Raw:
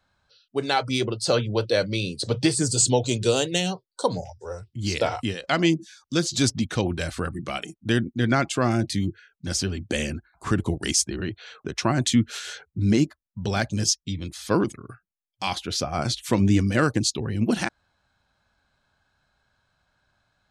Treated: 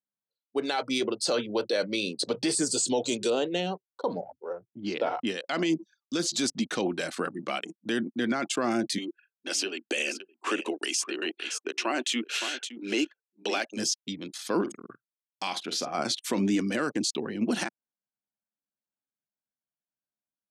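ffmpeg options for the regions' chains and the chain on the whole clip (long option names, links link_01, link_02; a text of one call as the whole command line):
ffmpeg -i in.wav -filter_complex "[0:a]asettb=1/sr,asplit=3[link_01][link_02][link_03];[link_01]atrim=end=3.304[link_04];[link_02]atrim=start=3.3:end=5.27,asetpts=PTS-STARTPTS,afade=type=in:duration=0.004:curve=qsin,afade=type=out:start_time=1.966:duration=0.004:curve=qsin,lowpass=2600,equalizer=frequency=2000:width=1.7:gain=-5[link_05];[link_03]atrim=start=5.266[link_06];[link_04][link_05]acrossfade=duration=0.004:curve1=hsin:curve2=qsin[link_07];[link_07][link_06]acrossfade=duration=0.004:curve1=qsin:curve2=hsin,asettb=1/sr,asplit=3[link_08][link_09][link_10];[link_08]atrim=end=8.984[link_11];[link_09]atrim=start=8.98:end=13.77,asetpts=PTS-STARTPTS,afade=type=in:duration=0.004:curve=qsin,afade=type=out:start_time=4.786:duration=0.004:curve=qsin,highpass=frequency=310:width=0.5412,highpass=frequency=310:width=1.3066,equalizer=frequency=2700:width_type=o:width=0.4:gain=11.5,aecho=1:1:565:0.2,atrim=end_sample=211239[link_12];[link_10]atrim=start=13.766[link_13];[link_11][link_12]acrossfade=duration=0.004:curve1=hsin:curve2=qsin[link_14];[link_14][link_13]acrossfade=duration=0.004:curve1=qsin:curve2=hsin,asettb=1/sr,asplit=3[link_15][link_16][link_17];[link_15]atrim=end=14.614[link_18];[link_16]atrim=start=14.61:end=15.95,asetpts=PTS-STARTPTS,afade=type=in:duration=0.004:curve=qsin,afade=type=out:start_time=1.336:duration=0.004:curve=qsin,acompressor=threshold=-29dB:ratio=2:attack=3.2:release=140:knee=1:detection=peak,asplit=2[link_19][link_20];[link_20]adelay=48,volume=-11dB[link_21];[link_19][link_21]amix=inputs=2:normalize=0,atrim=end_sample=59094[link_22];[link_17]atrim=start=15.946[link_23];[link_18][link_22]acrossfade=duration=0.004:curve1=hsin:curve2=qsin[link_24];[link_24][link_23]acrossfade=duration=0.004:curve1=qsin:curve2=hsin,anlmdn=0.631,highpass=frequency=220:width=0.5412,highpass=frequency=220:width=1.3066,alimiter=limit=-18dB:level=0:latency=1:release=25" out.wav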